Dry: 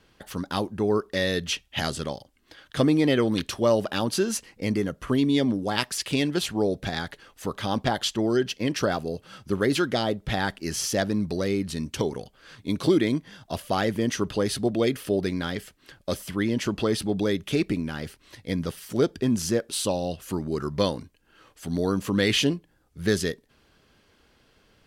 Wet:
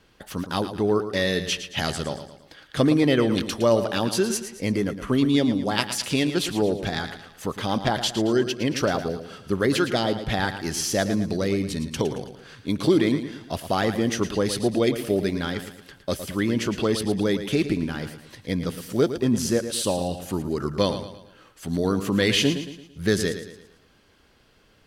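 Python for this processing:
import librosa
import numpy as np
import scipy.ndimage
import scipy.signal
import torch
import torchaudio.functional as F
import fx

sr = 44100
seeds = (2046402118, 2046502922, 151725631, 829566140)

y = fx.echo_feedback(x, sr, ms=112, feedback_pct=43, wet_db=-10.5)
y = y * librosa.db_to_amplitude(1.5)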